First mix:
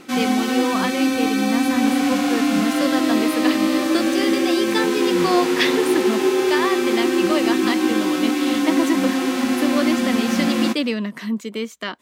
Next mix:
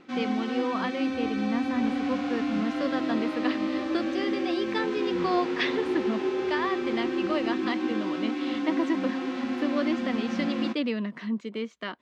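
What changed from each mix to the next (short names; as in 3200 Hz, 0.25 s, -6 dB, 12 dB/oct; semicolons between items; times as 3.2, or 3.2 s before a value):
speech -5.5 dB; first sound -9.5 dB; master: add air absorption 180 m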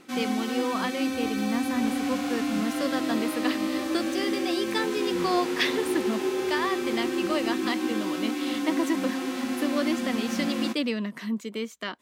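master: remove air absorption 180 m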